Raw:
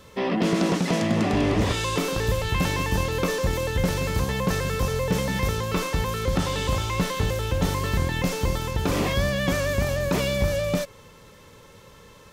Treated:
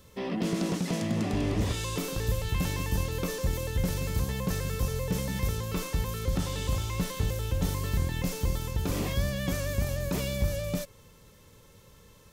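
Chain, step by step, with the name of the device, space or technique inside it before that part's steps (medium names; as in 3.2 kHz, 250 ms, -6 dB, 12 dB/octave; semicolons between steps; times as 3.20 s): smiley-face EQ (bass shelf 130 Hz +5.5 dB; peaking EQ 1.2 kHz -4 dB 2.9 oct; treble shelf 8.5 kHz +8.5 dB); trim -7 dB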